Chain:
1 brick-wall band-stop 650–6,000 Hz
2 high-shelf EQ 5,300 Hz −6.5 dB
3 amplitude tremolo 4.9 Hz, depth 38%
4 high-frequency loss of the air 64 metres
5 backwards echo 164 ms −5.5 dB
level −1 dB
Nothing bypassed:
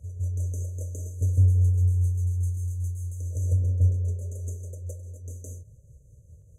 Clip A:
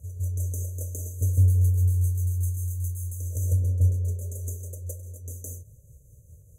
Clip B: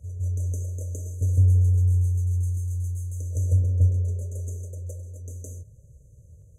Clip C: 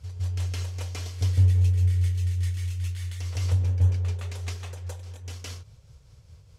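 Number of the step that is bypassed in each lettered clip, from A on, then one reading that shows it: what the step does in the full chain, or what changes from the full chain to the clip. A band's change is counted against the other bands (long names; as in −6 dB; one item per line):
4, change in momentary loudness spread −2 LU
3, change in integrated loudness +1.5 LU
1, change in momentary loudness spread −1 LU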